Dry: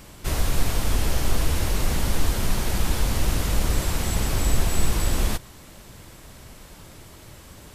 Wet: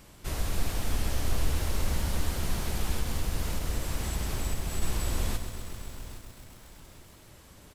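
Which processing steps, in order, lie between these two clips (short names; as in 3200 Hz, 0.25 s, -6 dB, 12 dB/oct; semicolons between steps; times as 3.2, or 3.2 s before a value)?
2.92–4.82 compressor, threshold -18 dBFS, peak gain reduction 6 dB; on a send: feedback echo 0.821 s, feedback 27%, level -14.5 dB; on the sum: lo-fi delay 0.131 s, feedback 80%, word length 7-bit, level -10 dB; gain -8 dB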